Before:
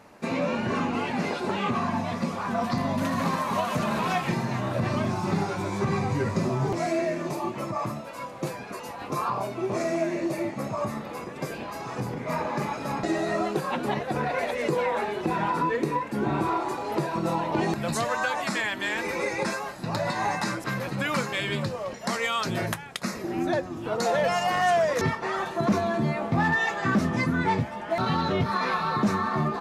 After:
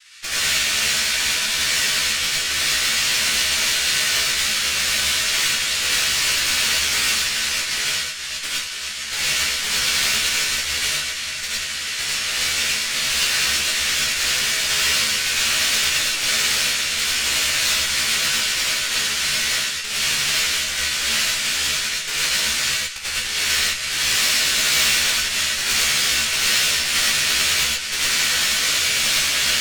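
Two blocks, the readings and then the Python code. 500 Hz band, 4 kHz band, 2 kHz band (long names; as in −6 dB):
−10.0 dB, +21.5 dB, +11.0 dB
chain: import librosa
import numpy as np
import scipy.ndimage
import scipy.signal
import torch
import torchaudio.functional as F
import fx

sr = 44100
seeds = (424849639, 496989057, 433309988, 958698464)

y = fx.noise_vocoder(x, sr, seeds[0], bands=1)
y = scipy.signal.sosfilt(scipy.signal.cheby2(4, 70, [170.0, 500.0], 'bandstop', fs=sr, output='sos'), y)
y = fx.high_shelf(y, sr, hz=5700.0, db=-9.0)
y = fx.tube_stage(y, sr, drive_db=32.0, bias=0.7)
y = fx.doubler(y, sr, ms=14.0, db=-3)
y = fx.rev_gated(y, sr, seeds[1], gate_ms=140, shape='rising', drr_db=-5.0)
y = F.gain(torch.from_numpy(y), 8.5).numpy()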